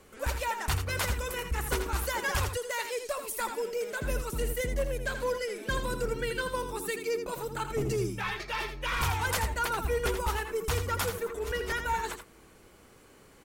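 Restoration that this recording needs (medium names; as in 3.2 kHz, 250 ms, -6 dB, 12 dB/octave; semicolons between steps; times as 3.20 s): inverse comb 82 ms -8 dB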